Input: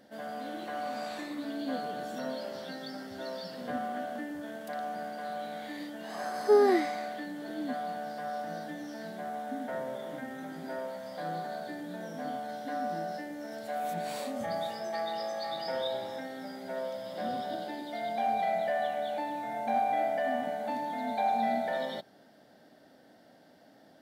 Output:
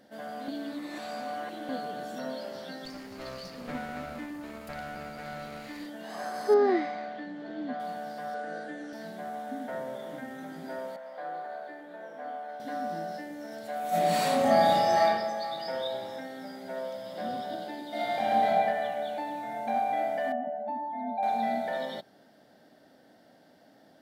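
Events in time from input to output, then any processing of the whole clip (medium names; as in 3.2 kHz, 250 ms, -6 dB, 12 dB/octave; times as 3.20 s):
0.48–1.69 s: reverse
2.85–5.86 s: comb filter that takes the minimum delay 0.43 ms
6.54–7.80 s: distance through air 170 m
8.34–8.93 s: cabinet simulation 170–8900 Hz, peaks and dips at 170 Hz -5 dB, 440 Hz +8 dB, 990 Hz -6 dB, 1.5 kHz +7 dB, 3.5 kHz -3 dB, 5.4 kHz -8 dB
10.96–12.60 s: three-band isolator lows -23 dB, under 360 Hz, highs -16 dB, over 2.6 kHz
13.89–15.03 s: reverb throw, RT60 1.2 s, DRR -11.5 dB
17.88–18.48 s: reverb throw, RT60 1.7 s, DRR -7 dB
20.32–21.23 s: spectral contrast enhancement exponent 1.7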